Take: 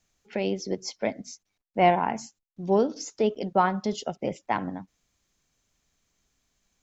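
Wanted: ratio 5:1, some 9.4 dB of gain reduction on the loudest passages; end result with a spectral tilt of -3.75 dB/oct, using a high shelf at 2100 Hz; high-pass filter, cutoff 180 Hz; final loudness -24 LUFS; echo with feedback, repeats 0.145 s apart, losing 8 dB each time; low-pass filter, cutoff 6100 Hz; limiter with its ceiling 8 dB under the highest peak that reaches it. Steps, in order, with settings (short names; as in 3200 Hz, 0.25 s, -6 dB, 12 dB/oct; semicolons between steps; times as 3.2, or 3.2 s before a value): HPF 180 Hz; LPF 6100 Hz; high shelf 2100 Hz +5 dB; compressor 5:1, threshold -25 dBFS; limiter -22 dBFS; feedback echo 0.145 s, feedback 40%, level -8 dB; gain +10.5 dB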